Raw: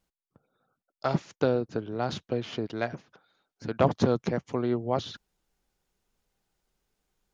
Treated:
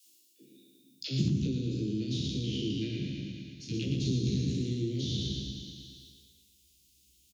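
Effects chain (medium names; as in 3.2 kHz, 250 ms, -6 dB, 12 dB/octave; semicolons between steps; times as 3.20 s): spectral sustain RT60 1.62 s; peaking EQ 1.7 kHz -3.5 dB 1.6 oct; phase dispersion lows, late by 66 ms, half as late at 420 Hz; compression 5:1, threshold -27 dBFS, peak gain reduction 10.5 dB; elliptic band-stop 320–2800 Hz, stop band 70 dB; feedback delay 114 ms, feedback 54%, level -6.5 dB; high-pass sweep 350 Hz -> 67 Hz, 0.79–1.34 s; treble shelf 3 kHz +11.5 dB, from 1.28 s -2 dB, from 3.74 s +4.5 dB; doubling 15 ms -5 dB; tape noise reduction on one side only encoder only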